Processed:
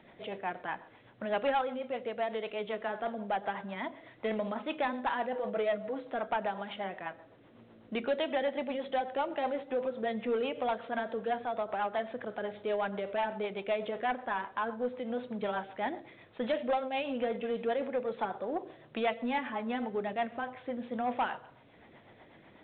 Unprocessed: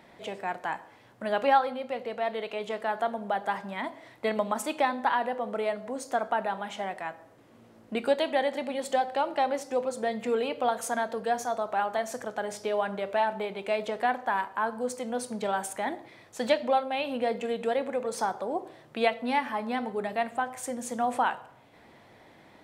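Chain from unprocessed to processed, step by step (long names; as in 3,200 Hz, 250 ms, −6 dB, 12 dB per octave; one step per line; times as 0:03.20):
0:05.35–0:06.10: comb filter 6.3 ms, depth 83%
rotating-speaker cabinet horn 8 Hz
soft clipping −23.5 dBFS, distortion −15 dB
A-law companding 64 kbit/s 8,000 Hz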